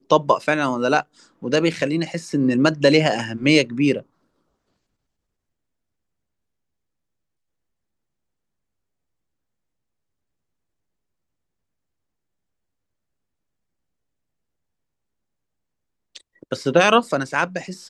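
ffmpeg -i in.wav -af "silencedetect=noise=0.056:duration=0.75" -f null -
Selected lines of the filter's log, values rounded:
silence_start: 3.98
silence_end: 16.16 | silence_duration: 12.18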